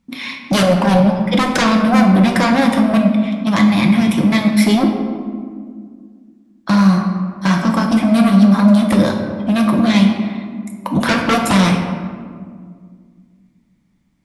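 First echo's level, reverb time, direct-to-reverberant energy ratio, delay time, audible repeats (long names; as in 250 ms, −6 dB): no echo audible, 1.9 s, 1.5 dB, no echo audible, no echo audible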